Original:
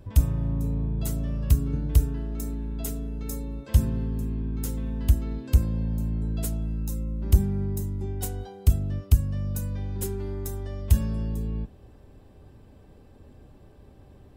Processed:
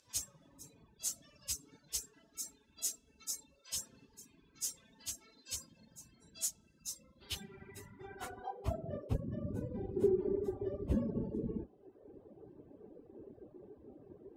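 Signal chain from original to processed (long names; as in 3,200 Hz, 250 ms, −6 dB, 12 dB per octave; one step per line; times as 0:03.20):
random phases in long frames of 50 ms
band-pass filter sweep 6,200 Hz → 380 Hz, 0:06.81–0:09.38
reverb reduction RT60 1.2 s
level +8 dB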